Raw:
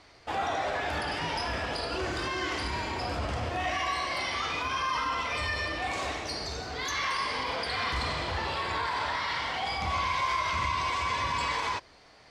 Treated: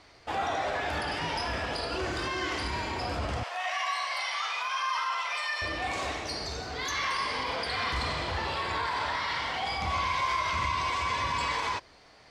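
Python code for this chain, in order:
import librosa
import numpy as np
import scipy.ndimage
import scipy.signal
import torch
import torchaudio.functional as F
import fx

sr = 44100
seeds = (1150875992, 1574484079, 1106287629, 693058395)

y = fx.highpass(x, sr, hz=700.0, slope=24, at=(3.43, 5.62))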